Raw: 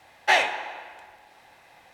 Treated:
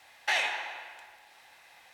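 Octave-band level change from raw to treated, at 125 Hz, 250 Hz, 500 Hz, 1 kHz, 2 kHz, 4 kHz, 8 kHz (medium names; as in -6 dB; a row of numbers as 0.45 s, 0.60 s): no reading, under -10 dB, -12.0 dB, -10.0 dB, -6.0 dB, -4.5 dB, -4.0 dB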